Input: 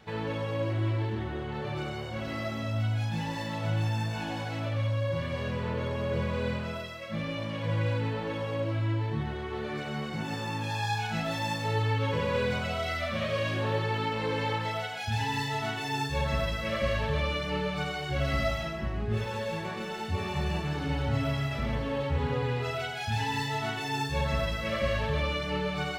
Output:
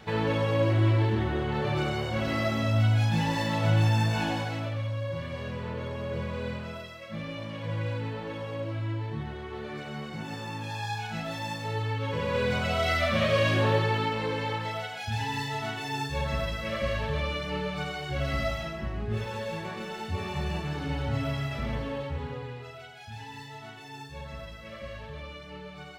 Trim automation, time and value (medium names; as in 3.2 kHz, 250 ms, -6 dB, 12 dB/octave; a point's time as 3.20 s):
4.25 s +6 dB
4.83 s -3 dB
12.01 s -3 dB
12.91 s +6 dB
13.61 s +6 dB
14.41 s -1 dB
21.81 s -1 dB
22.73 s -12 dB